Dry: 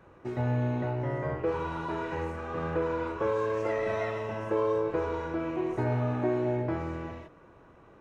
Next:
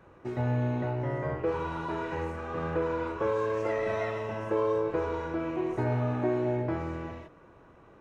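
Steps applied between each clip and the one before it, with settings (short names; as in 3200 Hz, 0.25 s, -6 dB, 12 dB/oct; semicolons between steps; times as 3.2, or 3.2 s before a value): nothing audible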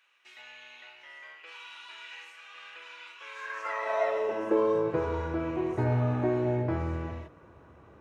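high-pass sweep 2800 Hz -> 70 Hz, 3.23–5.26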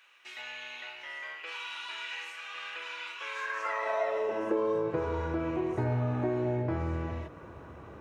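compressor 2:1, threshold -42 dBFS, peak gain reduction 12 dB; gain +7 dB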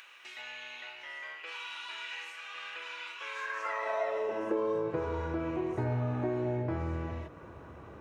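upward compressor, threshold -43 dBFS; gain -2 dB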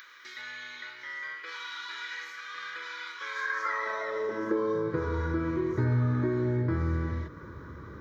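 fixed phaser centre 2700 Hz, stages 6; gain +7 dB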